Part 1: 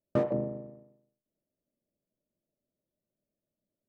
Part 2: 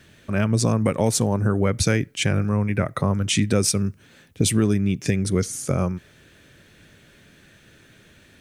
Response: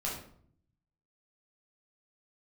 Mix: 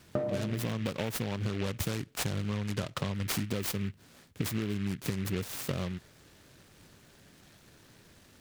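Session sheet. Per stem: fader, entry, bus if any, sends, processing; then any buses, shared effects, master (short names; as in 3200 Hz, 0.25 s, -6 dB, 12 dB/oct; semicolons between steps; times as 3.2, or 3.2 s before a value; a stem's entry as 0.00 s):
+1.0 dB, 0.00 s, send -7 dB, dry
-5.5 dB, 0.00 s, no send, noise-modulated delay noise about 2100 Hz, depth 0.12 ms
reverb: on, RT60 0.60 s, pre-delay 9 ms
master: compressor, threshold -29 dBFS, peak gain reduction 11 dB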